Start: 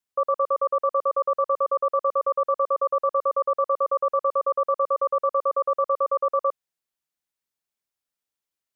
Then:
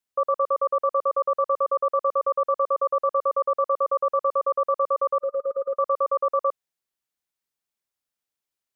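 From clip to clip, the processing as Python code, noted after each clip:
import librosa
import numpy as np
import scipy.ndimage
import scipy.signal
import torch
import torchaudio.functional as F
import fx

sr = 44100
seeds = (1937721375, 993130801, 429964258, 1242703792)

y = fx.spec_box(x, sr, start_s=5.22, length_s=0.54, low_hz=580.0, high_hz=1200.0, gain_db=-20)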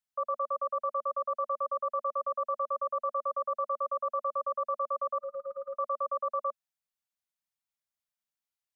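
y = scipy.signal.sosfilt(scipy.signal.ellip(3, 1.0, 40, [230.0, 580.0], 'bandstop', fs=sr, output='sos'), x)
y = y * 10.0 ** (-6.5 / 20.0)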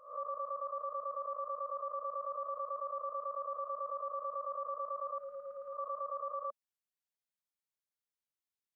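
y = fx.spec_swells(x, sr, rise_s=0.5)
y = y * 10.0 ** (-8.0 / 20.0)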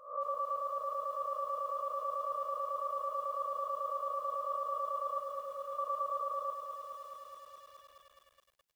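y = fx.echo_crushed(x, sr, ms=211, feedback_pct=80, bits=11, wet_db=-6)
y = y * 10.0 ** (3.5 / 20.0)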